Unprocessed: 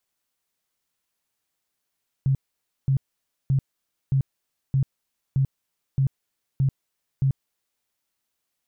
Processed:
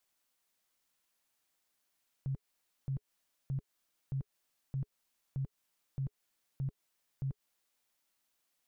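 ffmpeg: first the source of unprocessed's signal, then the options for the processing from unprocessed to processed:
-f lavfi -i "aevalsrc='0.141*sin(2*PI*135*mod(t,0.62))*lt(mod(t,0.62),12/135)':d=5.58:s=44100"
-af "equalizer=f=93:t=o:w=1.9:g=-6.5,bandreject=f=420:w=12,alimiter=level_in=2.37:limit=0.0631:level=0:latency=1:release=141,volume=0.422"

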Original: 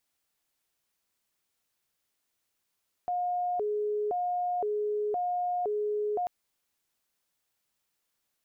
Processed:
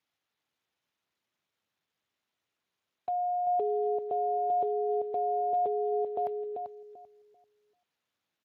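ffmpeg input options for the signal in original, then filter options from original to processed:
-f lavfi -i "aevalsrc='0.0447*sin(2*PI*(567*t+148/0.97*(0.5-abs(mod(0.97*t,1)-0.5))))':d=3.19:s=44100"
-filter_complex "[0:a]asplit=2[s0][s1];[s1]adelay=390,lowpass=f=870:p=1,volume=0.631,asplit=2[s2][s3];[s3]adelay=390,lowpass=f=870:p=1,volume=0.26,asplit=2[s4][s5];[s5]adelay=390,lowpass=f=870:p=1,volume=0.26,asplit=2[s6][s7];[s7]adelay=390,lowpass=f=870:p=1,volume=0.26[s8];[s2][s4][s6][s8]amix=inputs=4:normalize=0[s9];[s0][s9]amix=inputs=2:normalize=0" -ar 32000 -c:a libspeex -b:a 28k

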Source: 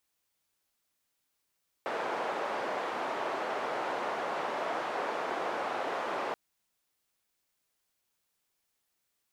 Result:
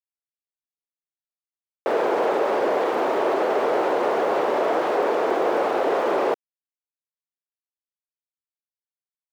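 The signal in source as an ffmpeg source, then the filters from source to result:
-f lavfi -i "anoisesrc=c=white:d=4.48:r=44100:seed=1,highpass=f=520,lowpass=f=820,volume=-11.8dB"
-filter_complex "[0:a]equalizer=f=420:t=o:w=1.5:g=13,asplit=2[s0][s1];[s1]alimiter=limit=0.0708:level=0:latency=1,volume=1.33[s2];[s0][s2]amix=inputs=2:normalize=0,aeval=exprs='val(0)*gte(abs(val(0)),0.00708)':c=same"

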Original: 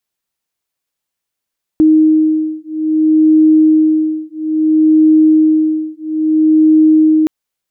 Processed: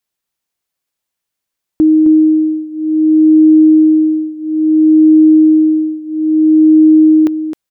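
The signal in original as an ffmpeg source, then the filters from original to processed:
-f lavfi -i "aevalsrc='0.299*(sin(2*PI*312*t)+sin(2*PI*312.6*t))':d=5.47:s=44100"
-af "aecho=1:1:263:0.376"

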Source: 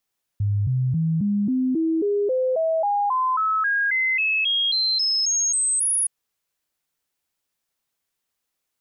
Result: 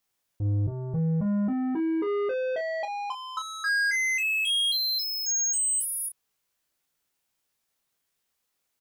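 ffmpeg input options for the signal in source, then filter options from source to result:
-f lavfi -i "aevalsrc='0.119*clip(min(mod(t,0.27),0.27-mod(t,0.27))/0.005,0,1)*sin(2*PI*102*pow(2,floor(t/0.27)/3)*mod(t,0.27))':d=5.67:s=44100"
-af "asoftclip=type=tanh:threshold=0.0376,aecho=1:1:19|49:0.562|0.282"

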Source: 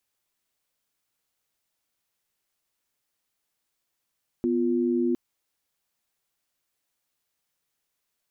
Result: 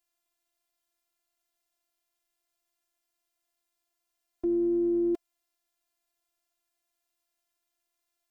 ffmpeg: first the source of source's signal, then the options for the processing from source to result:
-f lavfi -i "aevalsrc='0.0631*(sin(2*PI*246.94*t)+sin(2*PI*349.23*t))':d=0.71:s=44100"
-af "equalizer=f=730:w=7.1:g=9,afftfilt=real='hypot(re,im)*cos(PI*b)':imag='0':win_size=512:overlap=0.75"

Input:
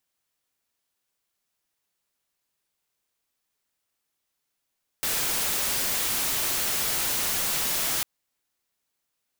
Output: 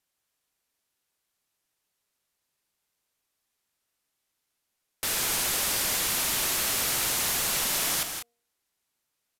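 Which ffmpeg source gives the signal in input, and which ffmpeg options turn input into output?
-f lavfi -i "anoisesrc=c=white:a=0.0819:d=3:r=44100:seed=1"
-filter_complex "[0:a]aresample=32000,aresample=44100,bandreject=f=235.6:t=h:w=4,bandreject=f=471.2:t=h:w=4,bandreject=f=706.8:t=h:w=4,asplit=2[s0][s1];[s1]aecho=0:1:163.3|195.3:0.355|0.316[s2];[s0][s2]amix=inputs=2:normalize=0"

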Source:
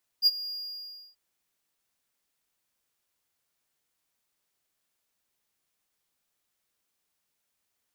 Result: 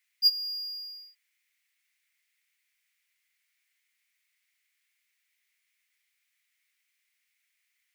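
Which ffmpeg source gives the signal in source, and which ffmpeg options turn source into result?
-f lavfi -i "aevalsrc='0.211*(1-4*abs(mod(4830*t+0.25,1)-0.5))':d=0.935:s=44100,afade=t=in:d=0.046,afade=t=out:st=0.046:d=0.035:silence=0.133,afade=t=out:st=0.28:d=0.655"
-af "highpass=f=2100:t=q:w=5.6"

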